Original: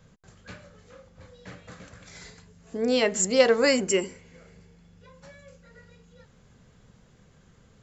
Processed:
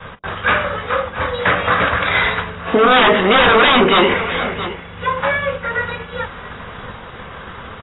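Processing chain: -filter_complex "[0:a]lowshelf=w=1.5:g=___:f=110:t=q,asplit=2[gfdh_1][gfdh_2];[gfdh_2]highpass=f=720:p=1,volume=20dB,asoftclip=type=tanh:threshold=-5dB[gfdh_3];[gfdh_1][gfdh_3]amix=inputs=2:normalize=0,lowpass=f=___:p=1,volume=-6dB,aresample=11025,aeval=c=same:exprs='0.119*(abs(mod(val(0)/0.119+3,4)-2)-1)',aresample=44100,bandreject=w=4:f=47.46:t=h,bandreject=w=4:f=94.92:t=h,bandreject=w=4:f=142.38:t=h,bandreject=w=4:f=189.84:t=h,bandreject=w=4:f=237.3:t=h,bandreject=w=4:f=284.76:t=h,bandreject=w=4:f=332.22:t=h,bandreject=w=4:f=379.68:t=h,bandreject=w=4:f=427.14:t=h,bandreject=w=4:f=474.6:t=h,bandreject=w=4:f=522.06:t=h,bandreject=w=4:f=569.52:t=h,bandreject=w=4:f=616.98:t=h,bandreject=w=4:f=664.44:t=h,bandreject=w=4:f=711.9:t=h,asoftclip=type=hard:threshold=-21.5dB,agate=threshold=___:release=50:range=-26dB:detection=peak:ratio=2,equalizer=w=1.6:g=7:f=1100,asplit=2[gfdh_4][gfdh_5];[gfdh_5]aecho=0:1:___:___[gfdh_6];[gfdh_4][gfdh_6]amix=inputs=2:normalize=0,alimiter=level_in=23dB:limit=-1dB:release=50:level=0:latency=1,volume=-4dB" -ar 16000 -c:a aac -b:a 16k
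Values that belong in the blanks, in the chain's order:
7, 4200, -48dB, 669, 0.106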